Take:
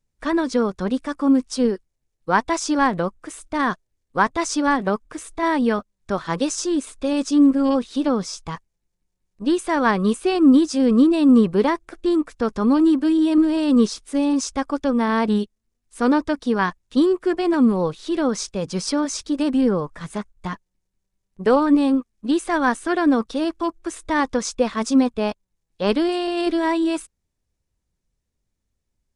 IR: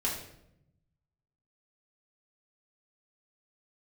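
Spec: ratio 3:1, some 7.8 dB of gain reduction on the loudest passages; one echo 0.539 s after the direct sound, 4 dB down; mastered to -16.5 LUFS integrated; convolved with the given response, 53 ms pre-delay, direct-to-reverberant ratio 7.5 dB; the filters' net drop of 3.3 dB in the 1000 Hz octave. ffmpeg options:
-filter_complex "[0:a]equalizer=f=1k:t=o:g=-4,acompressor=threshold=-21dB:ratio=3,aecho=1:1:539:0.631,asplit=2[a][b];[1:a]atrim=start_sample=2205,adelay=53[c];[b][c]afir=irnorm=-1:irlink=0,volume=-13.5dB[d];[a][d]amix=inputs=2:normalize=0,volume=7dB"

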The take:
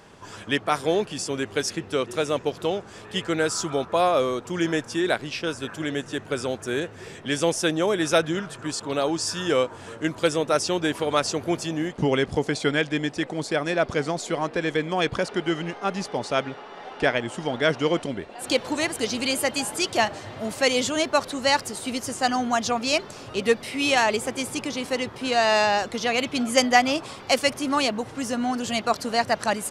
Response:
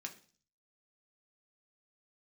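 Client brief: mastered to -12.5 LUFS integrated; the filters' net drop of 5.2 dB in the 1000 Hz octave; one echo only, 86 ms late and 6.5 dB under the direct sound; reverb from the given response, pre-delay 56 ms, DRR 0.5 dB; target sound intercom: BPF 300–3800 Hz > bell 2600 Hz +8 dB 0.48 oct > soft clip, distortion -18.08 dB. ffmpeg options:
-filter_complex "[0:a]equalizer=f=1k:t=o:g=-8,aecho=1:1:86:0.473,asplit=2[a][b];[1:a]atrim=start_sample=2205,adelay=56[c];[b][c]afir=irnorm=-1:irlink=0,volume=2dB[d];[a][d]amix=inputs=2:normalize=0,highpass=300,lowpass=3.8k,equalizer=f=2.6k:t=o:w=0.48:g=8,asoftclip=threshold=-12.5dB,volume=11.5dB"

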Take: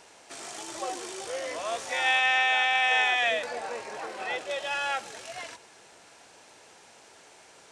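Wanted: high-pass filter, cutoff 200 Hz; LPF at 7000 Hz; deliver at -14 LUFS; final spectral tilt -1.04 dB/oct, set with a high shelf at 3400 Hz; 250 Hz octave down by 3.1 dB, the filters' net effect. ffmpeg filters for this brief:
-af "highpass=200,lowpass=7k,equalizer=f=250:t=o:g=-4,highshelf=f=3.4k:g=6.5,volume=11dB"

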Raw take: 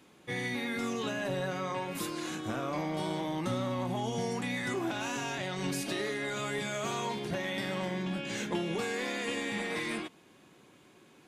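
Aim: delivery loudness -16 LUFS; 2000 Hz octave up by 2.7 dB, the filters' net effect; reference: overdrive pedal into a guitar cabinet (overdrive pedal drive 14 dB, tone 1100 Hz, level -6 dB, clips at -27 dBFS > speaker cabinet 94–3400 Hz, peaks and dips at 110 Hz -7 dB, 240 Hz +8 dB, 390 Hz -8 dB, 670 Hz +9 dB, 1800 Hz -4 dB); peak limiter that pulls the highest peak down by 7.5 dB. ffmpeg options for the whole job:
-filter_complex "[0:a]equalizer=f=2k:t=o:g=5.5,alimiter=level_in=3dB:limit=-24dB:level=0:latency=1,volume=-3dB,asplit=2[a][b];[b]highpass=f=720:p=1,volume=14dB,asoftclip=type=tanh:threshold=-27dB[c];[a][c]amix=inputs=2:normalize=0,lowpass=f=1.1k:p=1,volume=-6dB,highpass=94,equalizer=f=110:t=q:w=4:g=-7,equalizer=f=240:t=q:w=4:g=8,equalizer=f=390:t=q:w=4:g=-8,equalizer=f=670:t=q:w=4:g=9,equalizer=f=1.8k:t=q:w=4:g=-4,lowpass=f=3.4k:w=0.5412,lowpass=f=3.4k:w=1.3066,volume=20dB"

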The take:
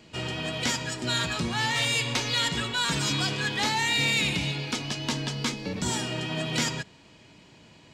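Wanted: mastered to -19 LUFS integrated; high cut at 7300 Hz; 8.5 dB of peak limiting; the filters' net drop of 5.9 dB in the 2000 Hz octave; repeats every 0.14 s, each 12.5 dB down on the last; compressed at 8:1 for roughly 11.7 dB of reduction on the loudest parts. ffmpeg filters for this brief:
-af "lowpass=7.3k,equalizer=f=2k:t=o:g=-7.5,acompressor=threshold=-37dB:ratio=8,alimiter=level_in=9.5dB:limit=-24dB:level=0:latency=1,volume=-9.5dB,aecho=1:1:140|280|420:0.237|0.0569|0.0137,volume=22.5dB"

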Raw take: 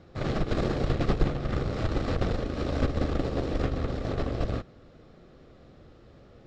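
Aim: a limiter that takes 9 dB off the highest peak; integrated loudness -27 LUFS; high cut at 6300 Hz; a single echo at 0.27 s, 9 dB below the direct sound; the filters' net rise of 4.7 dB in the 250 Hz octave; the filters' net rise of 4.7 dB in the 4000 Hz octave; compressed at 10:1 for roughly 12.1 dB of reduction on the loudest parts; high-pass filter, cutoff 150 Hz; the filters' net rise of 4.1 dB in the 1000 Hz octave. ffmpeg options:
-af "highpass=150,lowpass=6.3k,equalizer=f=250:t=o:g=6.5,equalizer=f=1k:t=o:g=5,equalizer=f=4k:t=o:g=6,acompressor=threshold=-33dB:ratio=10,alimiter=level_in=6.5dB:limit=-24dB:level=0:latency=1,volume=-6.5dB,aecho=1:1:270:0.355,volume=14dB"

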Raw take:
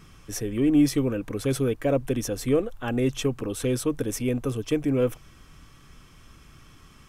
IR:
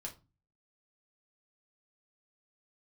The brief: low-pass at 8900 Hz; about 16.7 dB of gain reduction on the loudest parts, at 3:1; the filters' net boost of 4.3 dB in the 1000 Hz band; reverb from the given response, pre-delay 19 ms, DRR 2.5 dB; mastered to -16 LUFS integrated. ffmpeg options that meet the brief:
-filter_complex "[0:a]lowpass=8.9k,equalizer=f=1k:t=o:g=6,acompressor=threshold=-39dB:ratio=3,asplit=2[a][b];[1:a]atrim=start_sample=2205,adelay=19[c];[b][c]afir=irnorm=-1:irlink=0,volume=0dB[d];[a][d]amix=inputs=2:normalize=0,volume=21dB"

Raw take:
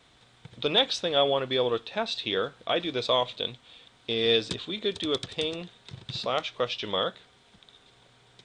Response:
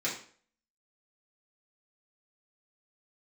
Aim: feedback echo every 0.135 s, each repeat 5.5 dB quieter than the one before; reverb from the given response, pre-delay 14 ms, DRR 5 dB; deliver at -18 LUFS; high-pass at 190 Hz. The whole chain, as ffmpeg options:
-filter_complex "[0:a]highpass=190,aecho=1:1:135|270|405|540|675|810|945:0.531|0.281|0.149|0.079|0.0419|0.0222|0.0118,asplit=2[a][b];[1:a]atrim=start_sample=2205,adelay=14[c];[b][c]afir=irnorm=-1:irlink=0,volume=-11.5dB[d];[a][d]amix=inputs=2:normalize=0,volume=7.5dB"

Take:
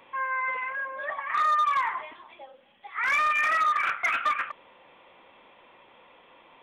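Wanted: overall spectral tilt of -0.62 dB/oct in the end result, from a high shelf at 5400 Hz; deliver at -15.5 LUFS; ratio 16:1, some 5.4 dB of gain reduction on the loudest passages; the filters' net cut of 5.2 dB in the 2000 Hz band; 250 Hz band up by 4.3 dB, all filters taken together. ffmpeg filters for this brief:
-af "equalizer=f=250:t=o:g=5.5,equalizer=f=2k:t=o:g=-7.5,highshelf=f=5.4k:g=8.5,acompressor=threshold=-28dB:ratio=16,volume=17dB"

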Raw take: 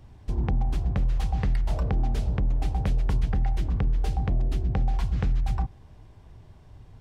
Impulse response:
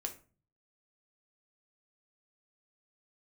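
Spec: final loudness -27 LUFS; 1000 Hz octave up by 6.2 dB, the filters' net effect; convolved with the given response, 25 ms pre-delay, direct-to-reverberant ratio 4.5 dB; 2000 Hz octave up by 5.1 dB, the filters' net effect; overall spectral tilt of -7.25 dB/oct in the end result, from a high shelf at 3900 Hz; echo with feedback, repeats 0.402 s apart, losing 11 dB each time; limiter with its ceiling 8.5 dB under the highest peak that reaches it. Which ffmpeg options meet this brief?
-filter_complex "[0:a]equalizer=f=1k:t=o:g=8,equalizer=f=2k:t=o:g=4.5,highshelf=f=3.9k:g=-3.5,alimiter=limit=-20.5dB:level=0:latency=1,aecho=1:1:402|804|1206:0.282|0.0789|0.0221,asplit=2[a][b];[1:a]atrim=start_sample=2205,adelay=25[c];[b][c]afir=irnorm=-1:irlink=0,volume=-4dB[d];[a][d]amix=inputs=2:normalize=0,volume=1.5dB"

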